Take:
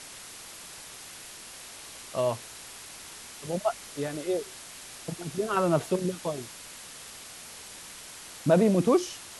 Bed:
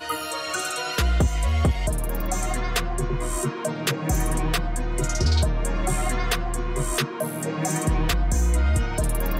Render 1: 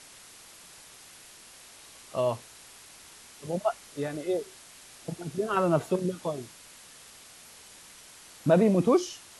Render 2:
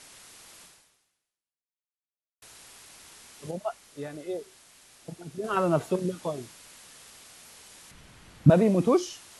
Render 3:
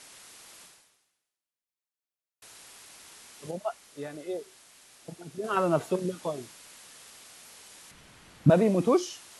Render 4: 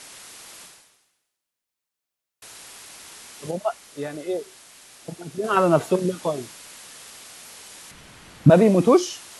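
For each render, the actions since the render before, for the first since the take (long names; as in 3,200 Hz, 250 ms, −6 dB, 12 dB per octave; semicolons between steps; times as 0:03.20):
noise reduction from a noise print 6 dB
0:00.63–0:02.42: fade out exponential; 0:03.51–0:05.44: clip gain −5 dB; 0:07.91–0:08.50: bass and treble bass +15 dB, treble −10 dB
low-shelf EQ 130 Hz −8 dB
level +7.5 dB; brickwall limiter −3 dBFS, peak gain reduction 2.5 dB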